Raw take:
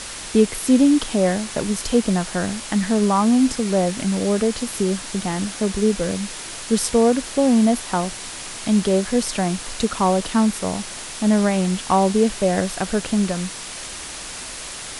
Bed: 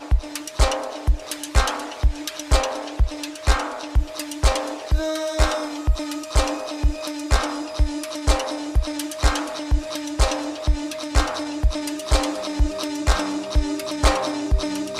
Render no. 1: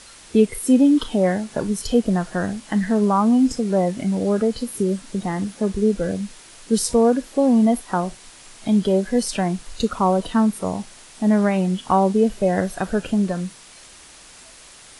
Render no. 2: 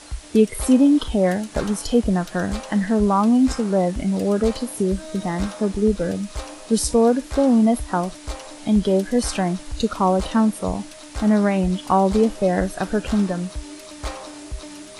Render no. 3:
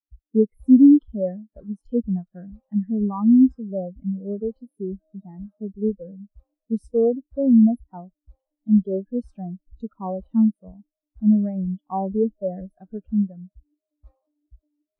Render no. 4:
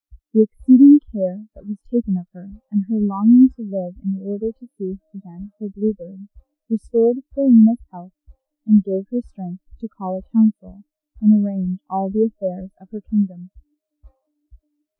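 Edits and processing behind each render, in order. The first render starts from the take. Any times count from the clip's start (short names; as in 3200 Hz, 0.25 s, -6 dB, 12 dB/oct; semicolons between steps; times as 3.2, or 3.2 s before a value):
noise print and reduce 12 dB
add bed -12.5 dB
sample leveller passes 1; spectral expander 2.5:1
gain +3.5 dB; limiter -3 dBFS, peak gain reduction 2 dB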